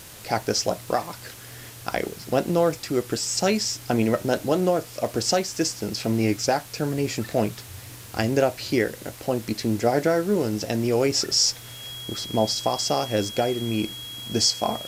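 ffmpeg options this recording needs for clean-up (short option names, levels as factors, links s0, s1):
-af "adeclick=t=4,bandreject=f=3300:w=30,afwtdn=0.0071"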